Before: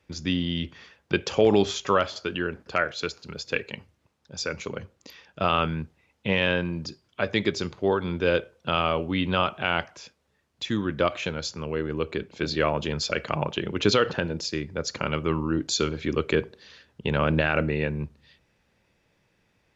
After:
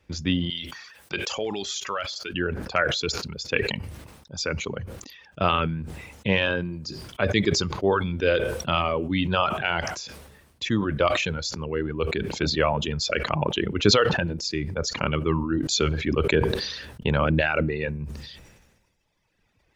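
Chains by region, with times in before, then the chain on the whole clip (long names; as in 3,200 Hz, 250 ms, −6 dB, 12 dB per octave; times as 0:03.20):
0:00.50–0:02.34: spectral tilt +3 dB per octave + downward compressor 1.5 to 1, threshold −40 dBFS
whole clip: reverb reduction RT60 1.8 s; low-shelf EQ 72 Hz +10 dB; level that may fall only so fast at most 46 dB per second; level +1.5 dB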